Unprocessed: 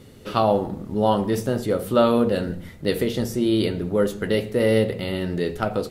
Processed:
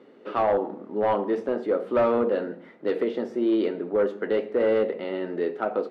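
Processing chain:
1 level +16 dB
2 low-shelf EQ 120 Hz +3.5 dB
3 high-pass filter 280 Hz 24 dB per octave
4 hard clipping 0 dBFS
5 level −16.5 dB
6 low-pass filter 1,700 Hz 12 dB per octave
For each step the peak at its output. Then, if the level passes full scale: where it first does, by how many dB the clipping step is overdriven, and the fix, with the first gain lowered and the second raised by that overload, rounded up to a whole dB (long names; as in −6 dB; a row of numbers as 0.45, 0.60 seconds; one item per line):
+11.0, +10.5, +10.0, 0.0, −16.5, −16.0 dBFS
step 1, 10.0 dB
step 1 +6 dB, step 5 −6.5 dB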